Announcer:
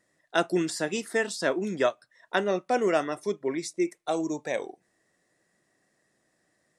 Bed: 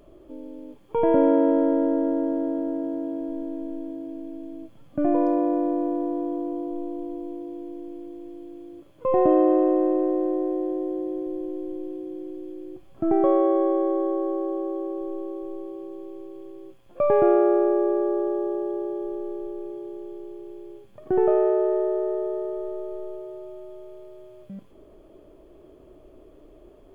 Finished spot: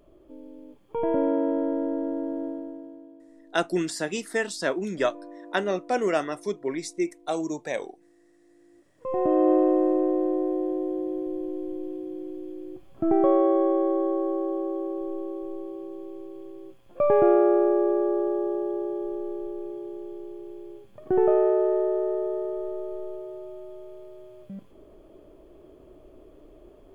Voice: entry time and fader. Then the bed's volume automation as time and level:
3.20 s, 0.0 dB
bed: 2.46 s -5.5 dB
3.24 s -21.5 dB
8.36 s -21.5 dB
9.5 s -0.5 dB

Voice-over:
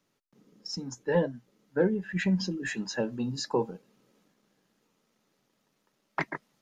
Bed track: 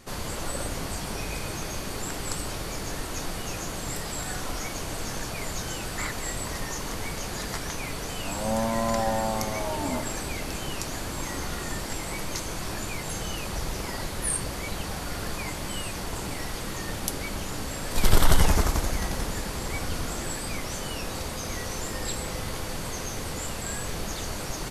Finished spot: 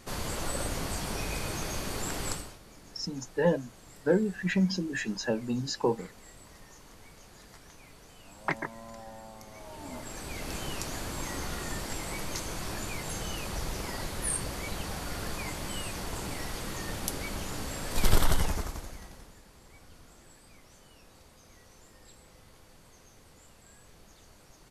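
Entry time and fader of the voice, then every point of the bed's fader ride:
2.30 s, +0.5 dB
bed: 2.3 s -1.5 dB
2.6 s -20 dB
9.4 s -20 dB
10.53 s -3.5 dB
18.12 s -3.5 dB
19.39 s -23.5 dB

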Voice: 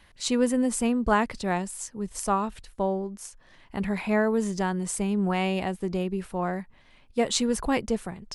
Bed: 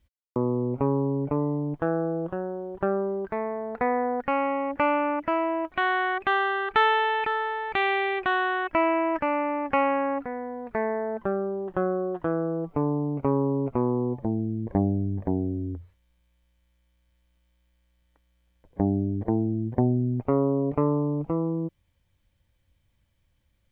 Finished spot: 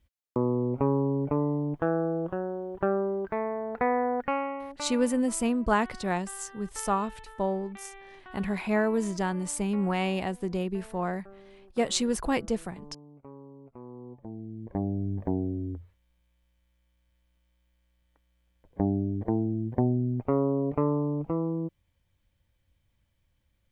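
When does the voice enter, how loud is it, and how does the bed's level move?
4.60 s, -2.0 dB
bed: 4.22 s -1 dB
5.22 s -23.5 dB
13.63 s -23.5 dB
15.11 s -2.5 dB

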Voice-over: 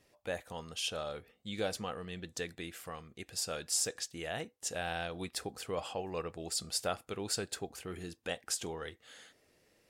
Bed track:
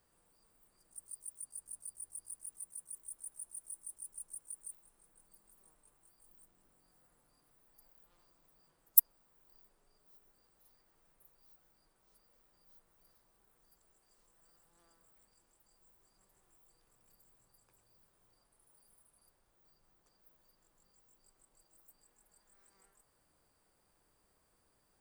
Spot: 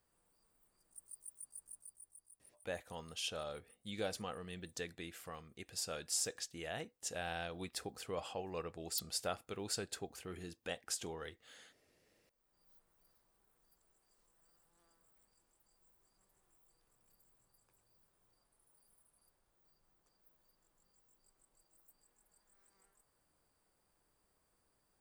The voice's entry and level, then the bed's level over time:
2.40 s, -4.5 dB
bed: 1.68 s -5 dB
2.64 s -21.5 dB
12.13 s -21.5 dB
12.62 s -4 dB

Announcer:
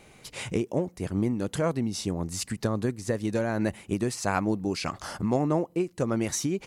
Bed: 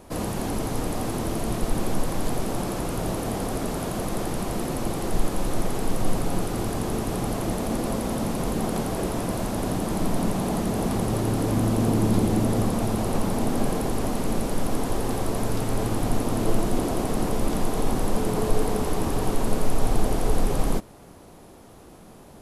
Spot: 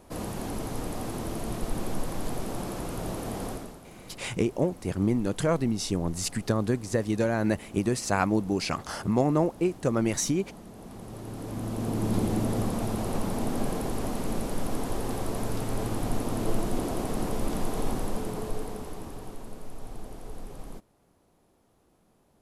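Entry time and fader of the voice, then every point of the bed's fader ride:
3.85 s, +1.5 dB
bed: 3.5 s -6 dB
3.82 s -20.5 dB
10.75 s -20.5 dB
12.18 s -5 dB
17.87 s -5 dB
19.53 s -18.5 dB

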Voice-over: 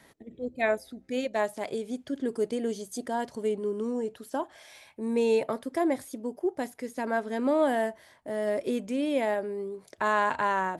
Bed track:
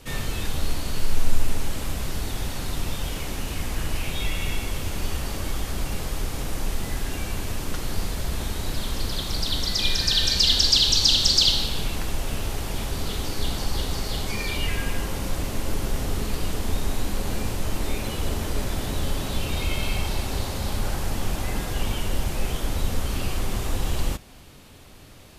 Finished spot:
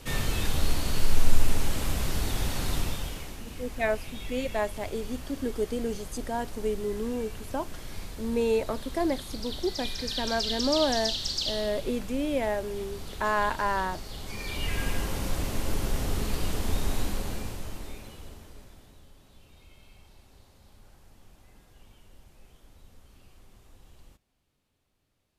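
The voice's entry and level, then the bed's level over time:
3.20 s, -1.0 dB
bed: 2.76 s 0 dB
3.42 s -12 dB
14.14 s -12 dB
14.83 s -2.5 dB
17.02 s -2.5 dB
19.09 s -29 dB

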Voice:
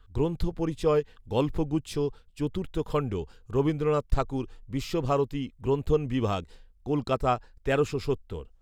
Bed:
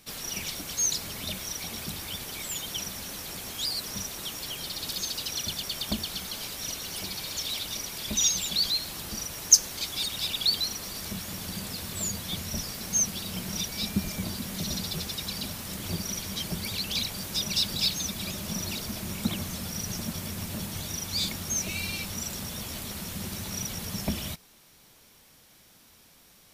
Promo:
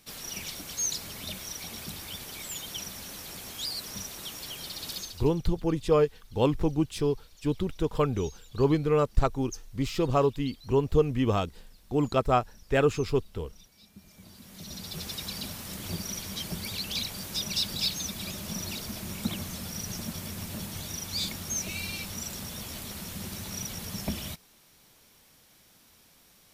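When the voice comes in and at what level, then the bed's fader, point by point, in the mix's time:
5.05 s, +1.5 dB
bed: 4.97 s -3.5 dB
5.42 s -25.5 dB
13.88 s -25.5 dB
15.09 s -2.5 dB

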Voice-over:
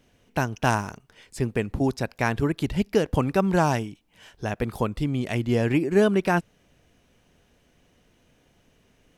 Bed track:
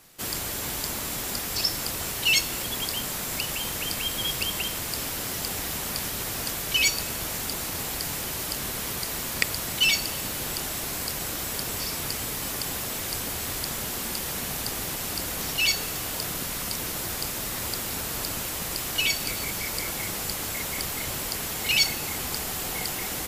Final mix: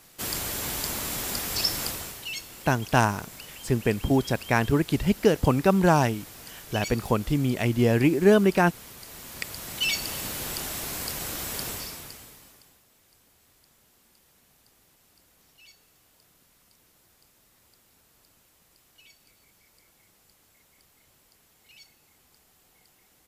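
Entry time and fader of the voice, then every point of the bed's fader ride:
2.30 s, +1.5 dB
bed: 1.86 s 0 dB
2.3 s -14 dB
8.98 s -14 dB
10.13 s -2 dB
11.68 s -2 dB
12.84 s -31 dB

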